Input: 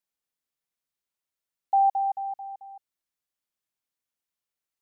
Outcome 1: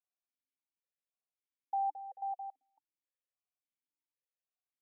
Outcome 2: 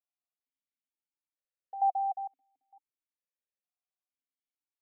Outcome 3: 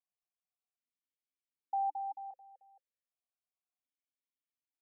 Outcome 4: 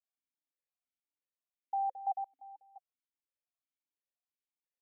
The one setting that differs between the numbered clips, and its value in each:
vowel sequencer, rate: 3.6, 2.2, 1.3, 5.8 Hz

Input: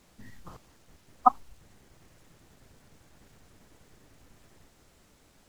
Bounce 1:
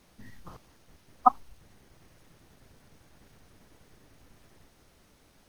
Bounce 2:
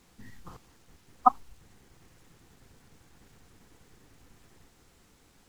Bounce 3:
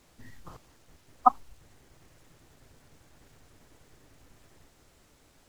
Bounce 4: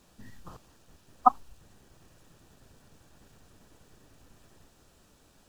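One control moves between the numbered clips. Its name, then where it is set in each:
notch, frequency: 7400, 610, 200, 2100 Hz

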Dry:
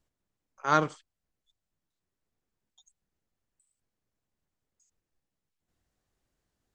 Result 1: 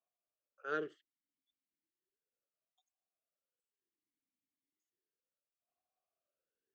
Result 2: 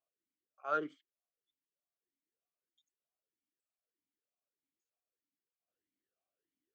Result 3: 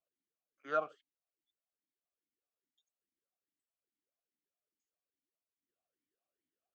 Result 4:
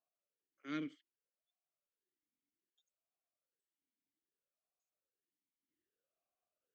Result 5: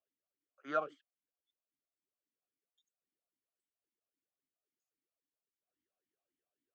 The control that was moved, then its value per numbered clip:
vowel sweep, rate: 0.34, 1.6, 2.4, 0.63, 3.7 Hz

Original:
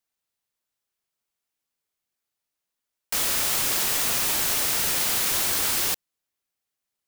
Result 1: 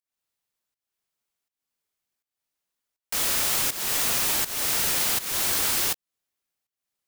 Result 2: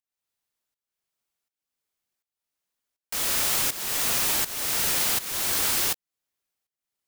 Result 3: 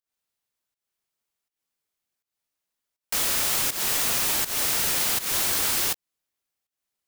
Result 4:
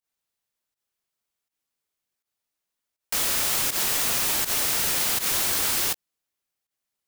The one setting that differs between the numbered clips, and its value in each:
pump, release: 356, 533, 222, 99 ms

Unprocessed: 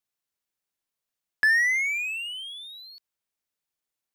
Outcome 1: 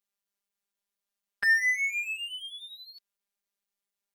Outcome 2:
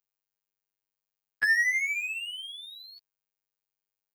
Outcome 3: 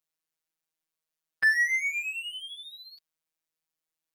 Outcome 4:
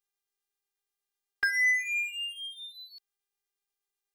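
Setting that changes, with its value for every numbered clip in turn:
robotiser, frequency: 200, 100, 160, 400 Hz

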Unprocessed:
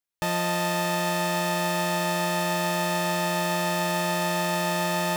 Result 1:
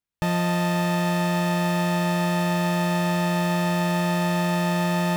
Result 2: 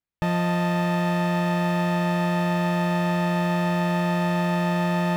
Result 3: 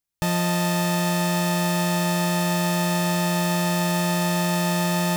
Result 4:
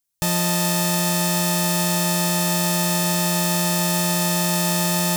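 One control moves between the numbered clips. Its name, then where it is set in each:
tone controls, treble: -5, -14, +4, +13 dB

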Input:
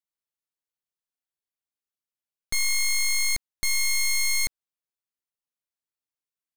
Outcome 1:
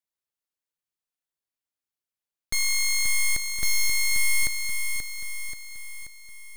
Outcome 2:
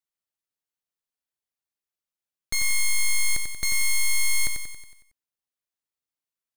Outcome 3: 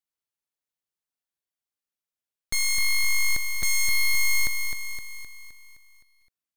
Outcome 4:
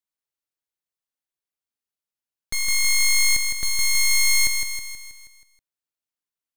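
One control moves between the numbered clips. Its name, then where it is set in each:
lo-fi delay, time: 532, 92, 259, 160 ms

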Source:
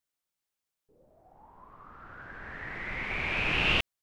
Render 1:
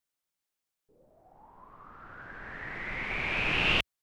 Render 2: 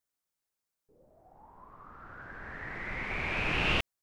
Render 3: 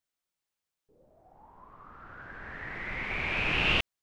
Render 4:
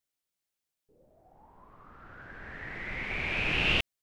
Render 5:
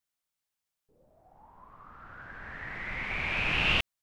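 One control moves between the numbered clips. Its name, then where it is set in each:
bell, frequency: 63, 3000, 15000, 1100, 380 Hz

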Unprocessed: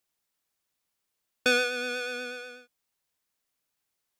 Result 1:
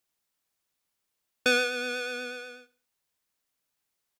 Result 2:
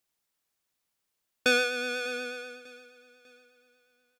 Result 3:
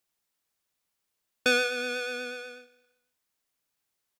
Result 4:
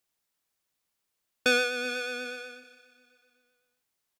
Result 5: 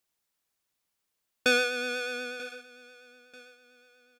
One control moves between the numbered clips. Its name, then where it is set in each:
feedback echo, time: 68, 597, 166, 392, 938 ms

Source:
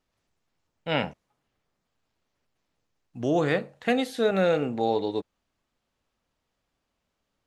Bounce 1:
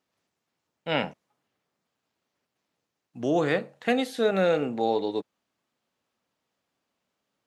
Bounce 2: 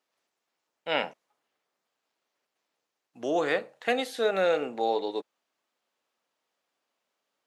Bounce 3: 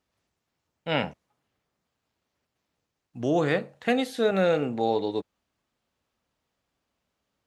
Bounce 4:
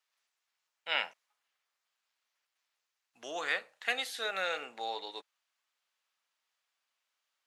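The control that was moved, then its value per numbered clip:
HPF, cutoff: 150, 410, 51, 1300 Hz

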